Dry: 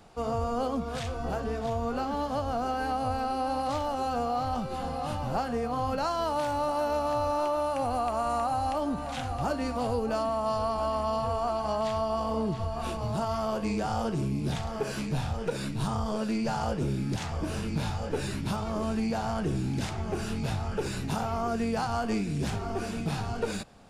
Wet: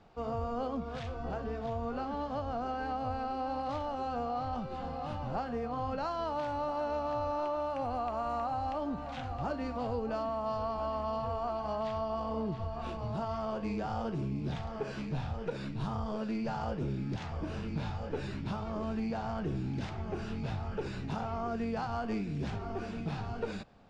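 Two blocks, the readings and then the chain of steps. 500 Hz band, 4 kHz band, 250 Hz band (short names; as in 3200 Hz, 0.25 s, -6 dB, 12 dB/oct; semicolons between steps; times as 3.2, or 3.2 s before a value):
-5.5 dB, -9.0 dB, -5.0 dB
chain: air absorption 150 m; gain -5 dB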